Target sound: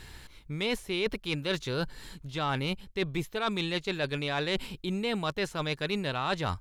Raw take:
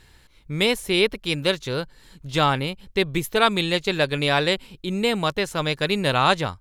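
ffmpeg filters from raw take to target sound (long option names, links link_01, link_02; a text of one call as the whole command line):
ffmpeg -i in.wav -filter_complex "[0:a]acrossover=split=5400[link_01][link_02];[link_02]acompressor=threshold=-44dB:ratio=4:attack=1:release=60[link_03];[link_01][link_03]amix=inputs=2:normalize=0,equalizer=frequency=530:width_type=o:width=0.23:gain=-3.5,areverse,acompressor=threshold=-33dB:ratio=6,areverse,asoftclip=type=tanh:threshold=-23dB,volume=5.5dB" out.wav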